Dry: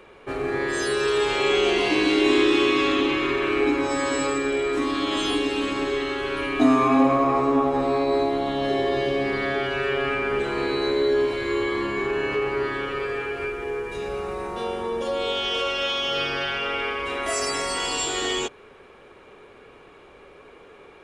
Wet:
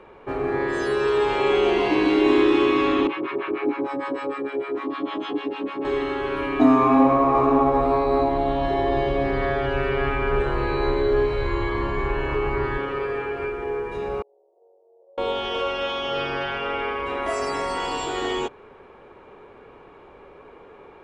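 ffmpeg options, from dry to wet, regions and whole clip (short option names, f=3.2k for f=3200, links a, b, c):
-filter_complex "[0:a]asettb=1/sr,asplit=3[a][b][c];[a]atrim=end=3.074[d];[b]atrim=start=3.07:end=5.85,asetpts=PTS-STARTPTS,afade=t=in:d=0.004:c=qsin,afade=t=out:st=2.776:d=0.004:c=qsin,acrossover=split=720[e][f];[e]aeval=exprs='val(0)*(1-1/2+1/2*cos(2*PI*6.6*n/s))':c=same[g];[f]aeval=exprs='val(0)*(1-1/2-1/2*cos(2*PI*6.6*n/s))':c=same[h];[g][h]amix=inputs=2:normalize=0,highpass=190,lowpass=3.9k[i];[c]atrim=start=5.846[j];[d][i]acrossfade=d=0.004:c1=hsin:c2=qsin[k];[k][j]acrossfade=d=0.004:c1=qsin:c2=hsin,asettb=1/sr,asplit=3[l][m][n];[l]atrim=end=6.784[o];[m]atrim=start=6.78:end=12.78,asetpts=PTS-STARTPTS,afade=t=in:d=0.004:c=qsin,afade=t=out:st=5.996:d=0.004:c=qsin,asubboost=boost=8.5:cutoff=79,aecho=1:1:565:0.376,atrim=end_sample=264600[p];[n]atrim=start=12.776[q];[o][p]acrossfade=d=0.004:c1=hsin:c2=qsin[r];[r][q]acrossfade=d=0.004:c1=qsin:c2=hsin,asettb=1/sr,asplit=3[s][t][u];[s]atrim=end=14.224[v];[t]atrim=start=14.22:end=15.18,asetpts=PTS-STARTPTS,afade=t=in:d=0.004:c=qsin,afade=t=out:st=0.956:d=0.004:c=qsin,aeval=exprs='max(val(0),0)':c=same,asuperpass=centerf=500:order=8:qfactor=1.6,aderivative[w];[u]atrim=start=15.176[x];[v][w]acrossfade=d=0.004:c1=hsin:c2=qsin[y];[y][x]acrossfade=d=0.004:c1=qsin:c2=hsin,lowpass=f=1.4k:p=1,equalizer=f=910:w=3.5:g=5.5,volume=2dB"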